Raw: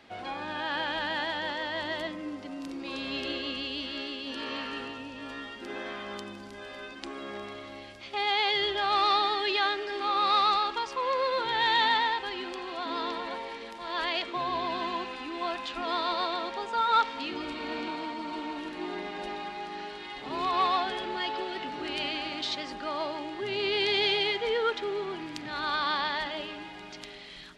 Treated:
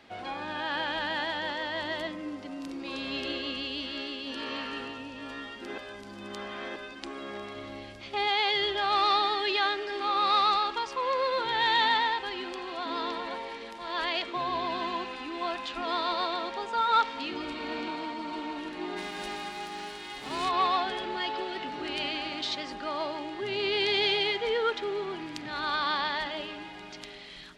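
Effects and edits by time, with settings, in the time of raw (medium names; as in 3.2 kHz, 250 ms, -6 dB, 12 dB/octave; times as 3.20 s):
5.78–6.76 s: reverse
7.56–8.28 s: bass shelf 350 Hz +6.5 dB
18.96–20.48 s: formants flattened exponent 0.6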